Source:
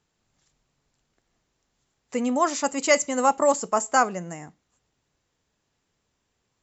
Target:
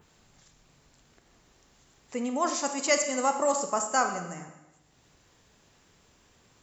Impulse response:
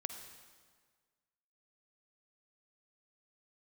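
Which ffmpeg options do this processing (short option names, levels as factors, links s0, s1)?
-filter_complex "[0:a]adynamicequalizer=threshold=0.0112:dfrequency=5500:dqfactor=0.81:tfrequency=5500:tqfactor=0.81:attack=5:release=100:ratio=0.375:range=2.5:mode=boostabove:tftype=bell,acompressor=mode=upward:threshold=0.01:ratio=2.5[s0];[1:a]atrim=start_sample=2205,asetrate=70560,aresample=44100[s1];[s0][s1]afir=irnorm=-1:irlink=0"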